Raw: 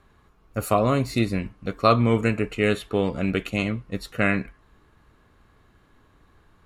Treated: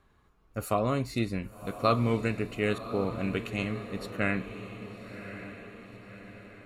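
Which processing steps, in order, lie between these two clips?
2.78–3.2 steep low-pass 1800 Hz; on a send: diffused feedback echo 1.097 s, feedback 52%, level -11.5 dB; on the sum: gain -7 dB

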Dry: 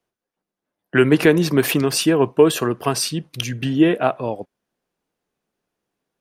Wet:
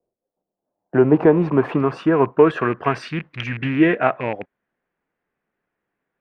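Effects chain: rattling part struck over -29 dBFS, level -21 dBFS; low-pass sweep 550 Hz -> 1900 Hz, 0.01–3.1; gain -1 dB

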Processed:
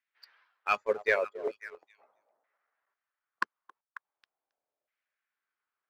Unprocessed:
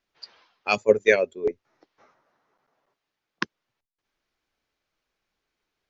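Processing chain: LFO band-pass saw down 0.41 Hz 590–2000 Hz; delay with a stepping band-pass 0.271 s, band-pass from 590 Hz, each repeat 1.4 oct, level -12 dB; sample leveller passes 1

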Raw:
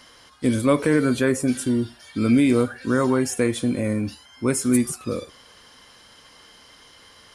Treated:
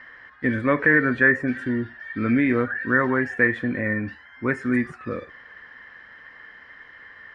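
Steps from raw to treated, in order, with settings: synth low-pass 1800 Hz, resonance Q 13; gain -3.5 dB

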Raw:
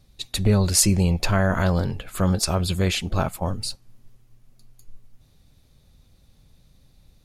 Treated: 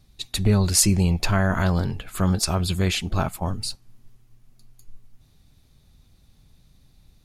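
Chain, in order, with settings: bell 530 Hz -6.5 dB 0.34 oct

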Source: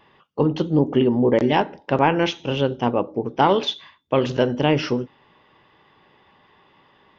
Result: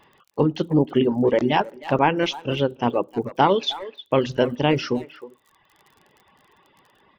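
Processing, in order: speakerphone echo 0.31 s, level -11 dB; crackle 39/s -39 dBFS; reverb removal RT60 1 s

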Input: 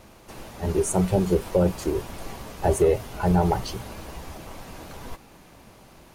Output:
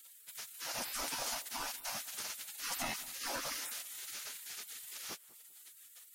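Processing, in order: bell 5500 Hz +8.5 dB 0.69 oct; spectral gate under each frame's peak -25 dB weak; in parallel at -2 dB: compressor, threshold -55 dBFS, peak gain reduction 19 dB; on the sum: high shelf 7300 Hz +5 dB; notch 1100 Hz, Q 17; on a send: darkening echo 0.196 s, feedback 30%, low-pass 1500 Hz, level -19 dB; on the sum: gain -1 dB

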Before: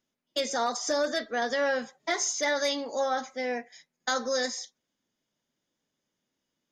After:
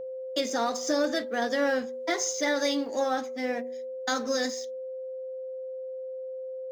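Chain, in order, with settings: G.711 law mismatch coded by A; HPF 54 Hz; bell 280 Hz +8.5 dB 0.82 oct; whine 520 Hz -34 dBFS; de-hum 122.8 Hz, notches 9

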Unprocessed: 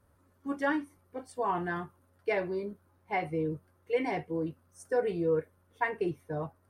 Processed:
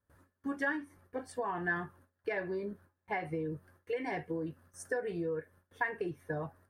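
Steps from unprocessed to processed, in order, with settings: 0.77–3.25 high shelf 4100 Hz -3.5 dB; gate with hold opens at -57 dBFS; compressor 6:1, threshold -37 dBFS, peak gain reduction 13.5 dB; bell 1700 Hz +11.5 dB 0.22 oct; gain +3.5 dB

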